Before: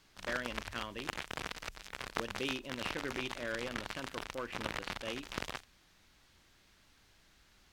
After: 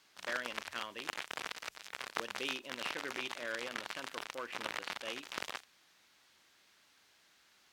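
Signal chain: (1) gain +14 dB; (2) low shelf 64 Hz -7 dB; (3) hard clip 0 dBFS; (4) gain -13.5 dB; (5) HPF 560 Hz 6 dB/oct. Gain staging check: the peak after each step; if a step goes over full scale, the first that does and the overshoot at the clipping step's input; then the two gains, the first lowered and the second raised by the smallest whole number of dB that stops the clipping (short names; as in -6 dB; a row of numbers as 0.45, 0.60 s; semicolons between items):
-1.0, -1.5, -1.5, -15.0, -14.0 dBFS; no overload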